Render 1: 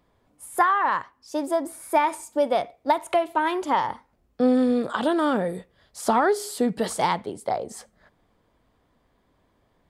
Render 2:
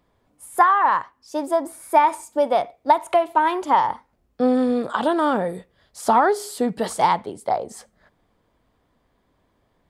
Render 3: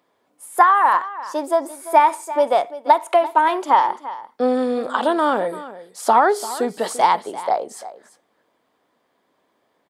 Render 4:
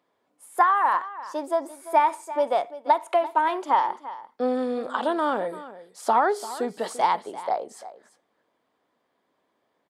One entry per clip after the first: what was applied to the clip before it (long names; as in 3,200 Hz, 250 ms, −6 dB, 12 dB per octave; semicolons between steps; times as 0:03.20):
dynamic equaliser 900 Hz, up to +6 dB, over −34 dBFS, Q 1.3
high-pass filter 320 Hz 12 dB per octave; single-tap delay 342 ms −15.5 dB; level +2.5 dB
high-shelf EQ 8,400 Hz −6 dB; level −6 dB